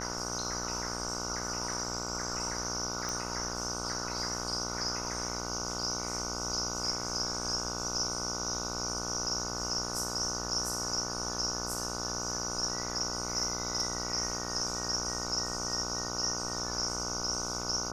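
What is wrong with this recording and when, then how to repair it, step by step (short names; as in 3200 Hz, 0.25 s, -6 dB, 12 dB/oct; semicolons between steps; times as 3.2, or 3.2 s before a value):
buzz 60 Hz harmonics 25 -39 dBFS
3.09 pop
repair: de-click; de-hum 60 Hz, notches 25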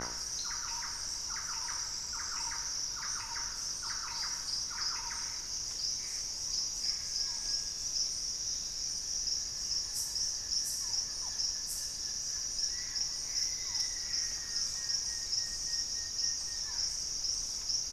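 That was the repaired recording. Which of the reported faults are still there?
none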